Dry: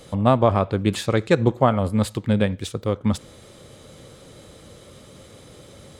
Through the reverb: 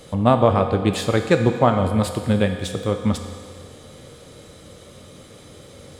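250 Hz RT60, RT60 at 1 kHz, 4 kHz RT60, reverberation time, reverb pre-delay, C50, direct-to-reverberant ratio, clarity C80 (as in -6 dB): 2.0 s, 2.0 s, 1.9 s, 2.0 s, 4 ms, 7.5 dB, 6.0 dB, 8.5 dB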